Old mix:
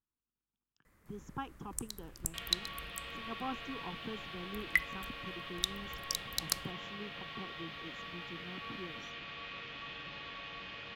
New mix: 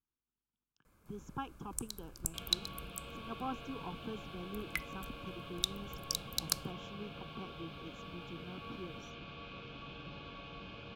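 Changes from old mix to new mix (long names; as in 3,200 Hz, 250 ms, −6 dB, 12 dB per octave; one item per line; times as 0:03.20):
second sound: add tilt shelving filter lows +6.5 dB, about 660 Hz
master: add Butterworth band-reject 1,900 Hz, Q 4.1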